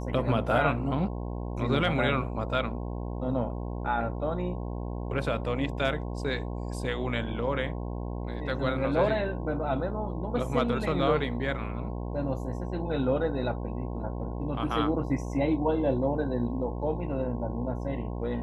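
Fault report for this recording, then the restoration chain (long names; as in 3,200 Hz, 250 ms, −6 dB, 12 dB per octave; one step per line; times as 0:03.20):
mains buzz 60 Hz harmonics 18 −34 dBFS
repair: hum removal 60 Hz, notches 18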